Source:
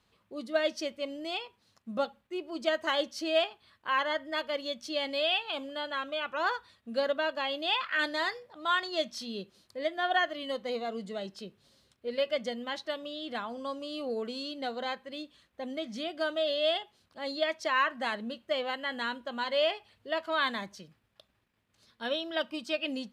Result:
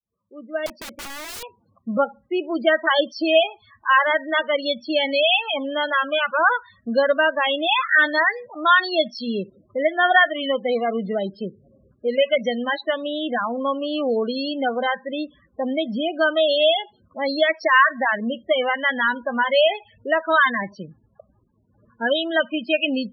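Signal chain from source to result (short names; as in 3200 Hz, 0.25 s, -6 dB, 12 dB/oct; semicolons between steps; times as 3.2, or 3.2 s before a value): opening faded in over 2.34 s; low-pass opened by the level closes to 1500 Hz, open at -25.5 dBFS; dynamic EQ 1700 Hz, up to +5 dB, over -43 dBFS, Q 1.2; in parallel at +3 dB: compressor 6:1, threshold -38 dBFS, peak gain reduction 17.5 dB; on the sum: loudest bins only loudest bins 16; 0.66–1.43 wrapped overs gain 37.5 dB; gain +8 dB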